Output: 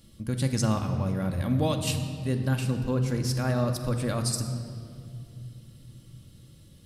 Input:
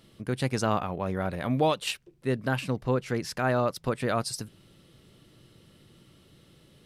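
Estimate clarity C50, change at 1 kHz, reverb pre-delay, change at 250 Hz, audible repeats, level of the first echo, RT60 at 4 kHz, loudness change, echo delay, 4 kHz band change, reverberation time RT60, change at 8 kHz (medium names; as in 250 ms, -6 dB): 8.0 dB, -6.0 dB, 4 ms, +2.5 dB, no echo, no echo, 1.6 s, +1.0 dB, no echo, +0.5 dB, 2.4 s, +5.0 dB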